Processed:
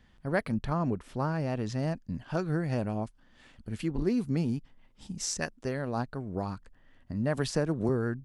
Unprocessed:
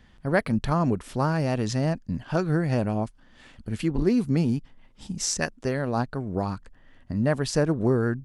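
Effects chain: 0.54–1.79 high shelf 4400 Hz -8 dB; 7.37–7.89 three-band squash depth 70%; gain -6 dB

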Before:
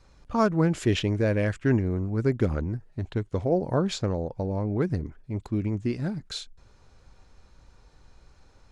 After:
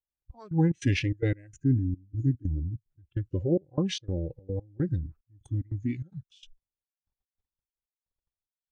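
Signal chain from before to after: gate -47 dBFS, range -23 dB; spectral noise reduction 22 dB; step gate "xxx..xx.xxx.x..x" 147 bpm -24 dB; spectral gain 1.47–2.91, 420–4900 Hz -19 dB; formant shift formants -3 st

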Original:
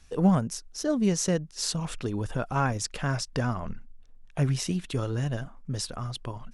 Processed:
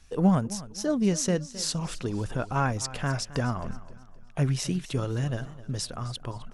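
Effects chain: warbling echo 0.262 s, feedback 39%, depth 92 cents, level -17 dB

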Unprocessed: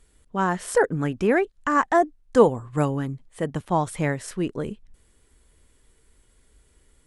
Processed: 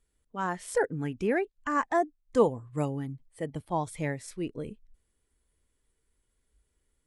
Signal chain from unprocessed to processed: spectral noise reduction 9 dB; gain -7 dB

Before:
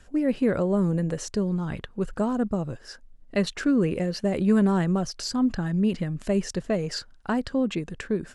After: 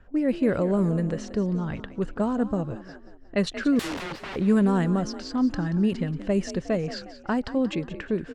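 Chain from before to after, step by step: 3.79–4.36 wrapped overs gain 29 dB; low-pass opened by the level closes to 1600 Hz, open at -18 dBFS; frequency-shifting echo 0.18 s, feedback 45%, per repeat +41 Hz, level -14 dB

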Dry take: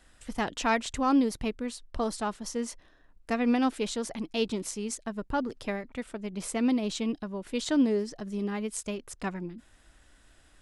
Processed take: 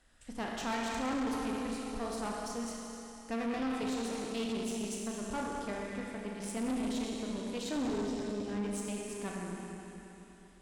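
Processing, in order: Schroeder reverb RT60 3.3 s, combs from 27 ms, DRR -2 dB; tube stage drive 25 dB, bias 0.55; gain -5.5 dB

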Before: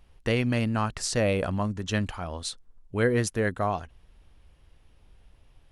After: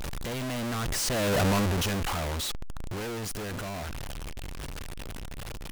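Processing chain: infinite clipping; Doppler pass-by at 1.47, 16 m/s, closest 2.1 m; power-law curve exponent 0.5; gain +5 dB

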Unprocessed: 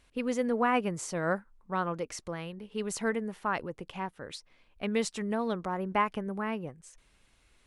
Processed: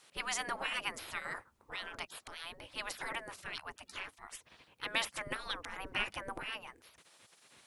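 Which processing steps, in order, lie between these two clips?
5.27–6.43 low shelf 68 Hz +11.5 dB; spectral gate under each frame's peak -20 dB weak; gain +9 dB

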